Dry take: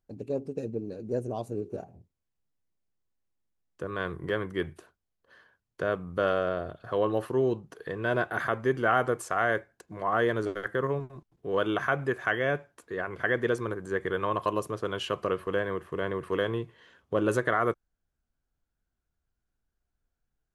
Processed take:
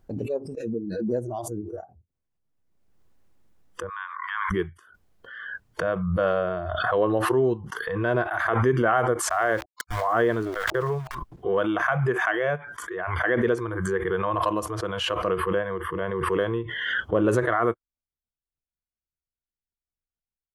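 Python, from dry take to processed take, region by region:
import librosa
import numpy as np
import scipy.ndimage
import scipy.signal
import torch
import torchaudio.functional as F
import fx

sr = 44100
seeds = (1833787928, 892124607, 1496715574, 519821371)

y = fx.chain(x, sr, fx.steep_highpass(hz=920.0, slope=48),
    fx.high_shelf(hz=3400.0, db=-10.5), at=(3.89, 4.51))
y = fx.chain(y, sr, fx.sample_gate(floor_db=-42.5),
    fx.sustainer(db_per_s=120.0), at=(9.29, 11.15))
y = fx.noise_reduce_blind(y, sr, reduce_db=23)
y = fx.high_shelf(y, sr, hz=2000.0, db=-9.5)
y = fx.pre_swell(y, sr, db_per_s=31.0)
y = y * librosa.db_to_amplitude(4.5)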